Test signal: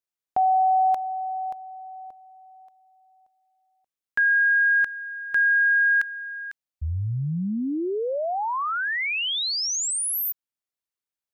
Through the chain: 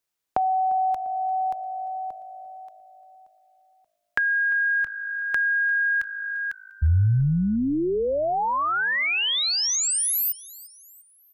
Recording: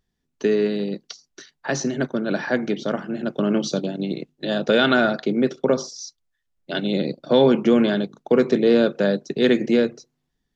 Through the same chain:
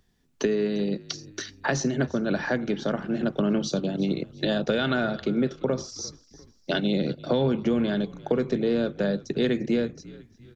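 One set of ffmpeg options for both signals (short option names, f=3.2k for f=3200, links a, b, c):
-filter_complex "[0:a]acrossover=split=110[a][b];[b]acompressor=threshold=-31dB:ratio=5:attack=8.3:release=827:knee=6:detection=peak[c];[a][c]amix=inputs=2:normalize=0,asplit=4[d][e][f][g];[e]adelay=348,afreqshift=-53,volume=-20dB[h];[f]adelay=696,afreqshift=-106,volume=-26.7dB[i];[g]adelay=1044,afreqshift=-159,volume=-33.5dB[j];[d][h][i][j]amix=inputs=4:normalize=0,volume=8.5dB"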